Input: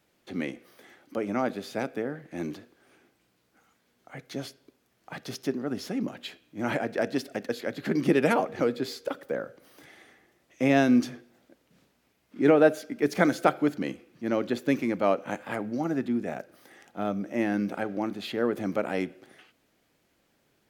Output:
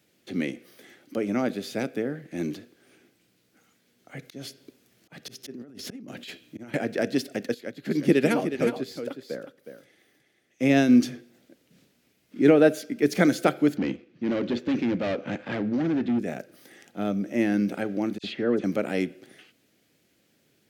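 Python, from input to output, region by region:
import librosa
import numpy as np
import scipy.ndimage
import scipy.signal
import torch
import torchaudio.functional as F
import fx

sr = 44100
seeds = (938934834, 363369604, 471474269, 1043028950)

y = fx.chain(x, sr, fx.auto_swell(attack_ms=312.0),
    fx.over_compress(threshold_db=-44.0, ratio=-1.0), at=(4.22, 6.74))
y = fx.chain(y, sr, fx.echo_single(ms=365, db=-6.5),
    fx.upward_expand(threshold_db=-41.0, expansion=1.5), at=(7.54, 10.93))
y = fx.chain(y, sr, fx.leveller(passes=1),
    fx.clip_hard(threshold_db=-25.0),
    fx.air_absorb(metres=180.0), at=(13.77, 16.19))
y = fx.chain(y, sr, fx.air_absorb(metres=100.0),
    fx.dispersion(late='lows', ms=57.0, hz=2400.0), at=(18.18, 18.64))
y = scipy.signal.sosfilt(scipy.signal.butter(2, 100.0, 'highpass', fs=sr, output='sos'), y)
y = fx.peak_eq(y, sr, hz=970.0, db=-10.5, octaves=1.3)
y = y * librosa.db_to_amplitude(5.0)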